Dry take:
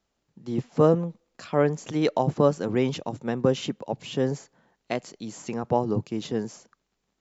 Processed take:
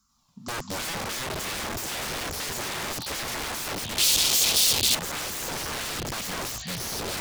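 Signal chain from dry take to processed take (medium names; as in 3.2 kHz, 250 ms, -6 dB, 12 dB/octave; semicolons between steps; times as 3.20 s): FFT filter 160 Hz 0 dB, 240 Hz +7 dB, 410 Hz -23 dB, 690 Hz -28 dB, 1.1 kHz +14 dB, 1.8 kHz -9 dB, 3.2 kHz -6 dB, 5.1 kHz +9 dB, 9.3 kHz +13 dB; ever faster or slower copies 93 ms, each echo -4 st, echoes 3; peak limiter -18 dBFS, peak gain reduction 11.5 dB; flange 0.5 Hz, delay 1.3 ms, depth 2.2 ms, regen +54%; Chebyshev shaper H 7 -44 dB, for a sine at -20 dBFS; integer overflow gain 34 dB; 3.98–4.95 s: resonant high shelf 2.4 kHz +12 dB, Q 1.5; loudspeaker Doppler distortion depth 0.13 ms; trim +7.5 dB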